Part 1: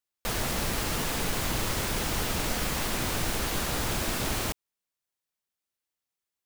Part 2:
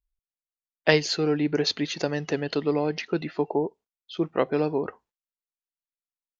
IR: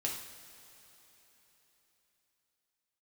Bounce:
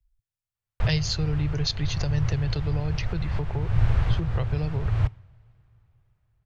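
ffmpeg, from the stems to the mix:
-filter_complex "[0:a]lowpass=2.1k,adelay=550,volume=-2.5dB,asplit=2[a][b];[b]volume=-22dB[c];[1:a]acrossover=split=140|3000[d][e][f];[e]acompressor=threshold=-34dB:ratio=3[g];[d][g][f]amix=inputs=3:normalize=0,volume=-0.5dB,asplit=2[h][i];[i]apad=whole_len=309111[j];[a][j]sidechaincompress=threshold=-38dB:ratio=8:attack=5.6:release=299[k];[2:a]atrim=start_sample=2205[l];[c][l]afir=irnorm=-1:irlink=0[m];[k][h][m]amix=inputs=3:normalize=0,lowshelf=f=170:t=q:w=3:g=13.5"

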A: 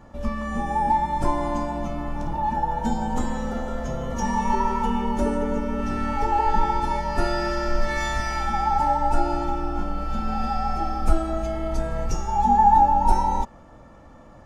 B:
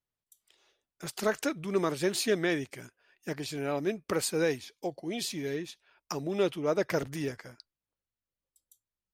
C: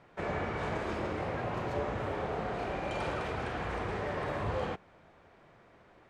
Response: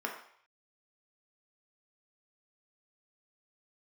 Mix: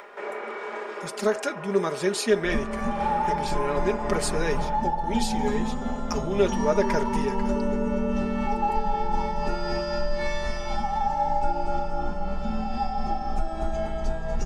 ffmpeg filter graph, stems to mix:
-filter_complex "[0:a]lowpass=7.2k,adelay=2300,volume=-1dB,asplit=2[a][b];[b]volume=-11dB[c];[1:a]lowpass=f=11k:w=0.5412,lowpass=f=11k:w=1.3066,volume=0dB,asplit=3[d][e][f];[e]volume=-12dB[g];[2:a]highpass=f=310:w=0.5412,highpass=f=310:w=1.3066,volume=-3.5dB,asplit=2[h][i];[i]volume=-5dB[j];[f]apad=whole_len=268689[k];[h][k]sidechaincompress=threshold=-52dB:ratio=8:attack=16:release=203[l];[a][l]amix=inputs=2:normalize=0,tremolo=f=3.9:d=0.32,alimiter=limit=-18.5dB:level=0:latency=1:release=312,volume=0dB[m];[3:a]atrim=start_sample=2205[n];[g][j]amix=inputs=2:normalize=0[o];[o][n]afir=irnorm=-1:irlink=0[p];[c]aecho=0:1:240|480|720|960|1200|1440|1680|1920:1|0.52|0.27|0.141|0.0731|0.038|0.0198|0.0103[q];[d][m][p][q]amix=inputs=4:normalize=0,aecho=1:1:4.9:0.6,acompressor=mode=upward:threshold=-33dB:ratio=2.5"

